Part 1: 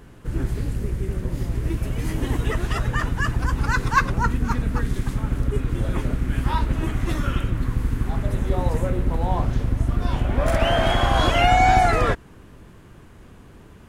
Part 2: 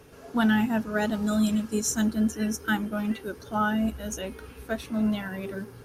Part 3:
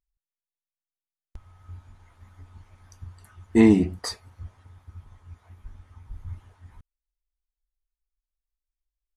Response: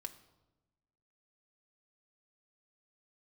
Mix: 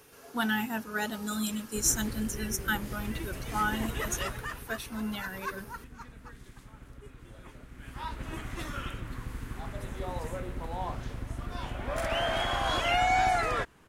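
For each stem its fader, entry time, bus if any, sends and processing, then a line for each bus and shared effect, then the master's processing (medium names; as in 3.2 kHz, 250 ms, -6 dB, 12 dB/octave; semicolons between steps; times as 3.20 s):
4.17 s -4 dB -> 4.84 s -17 dB -> 7.63 s -17 dB -> 8.29 s -6 dB, 1.50 s, no send, none
-1.0 dB, 0.00 s, no send, treble shelf 9.1 kHz +9.5 dB; band-stop 640 Hz, Q 12
mute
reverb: none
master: bass shelf 460 Hz -10.5 dB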